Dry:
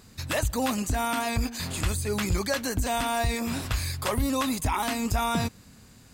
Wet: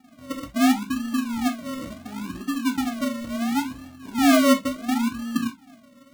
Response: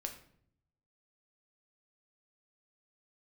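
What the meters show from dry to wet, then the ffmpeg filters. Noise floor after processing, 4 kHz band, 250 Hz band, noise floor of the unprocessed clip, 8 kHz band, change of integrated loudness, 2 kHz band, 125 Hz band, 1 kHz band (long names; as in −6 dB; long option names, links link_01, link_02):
−53 dBFS, +0.5 dB, +9.0 dB, −53 dBFS, −2.5 dB, +4.0 dB, +1.5 dB, −13.0 dB, 0.0 dB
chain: -filter_complex "[0:a]asplit=3[link_01][link_02][link_03];[link_01]bandpass=frequency=270:width_type=q:width=8,volume=0dB[link_04];[link_02]bandpass=frequency=2290:width_type=q:width=8,volume=-6dB[link_05];[link_03]bandpass=frequency=3010:width_type=q:width=8,volume=-9dB[link_06];[link_04][link_05][link_06]amix=inputs=3:normalize=0,lowshelf=frequency=390:width_type=q:width=3:gain=12,acrusher=samples=42:mix=1:aa=0.000001:lfo=1:lforange=25.2:lforate=0.71[link_07];[1:a]atrim=start_sample=2205,afade=type=out:start_time=0.15:duration=0.01,atrim=end_sample=7056,asetrate=66150,aresample=44100[link_08];[link_07][link_08]afir=irnorm=-1:irlink=0"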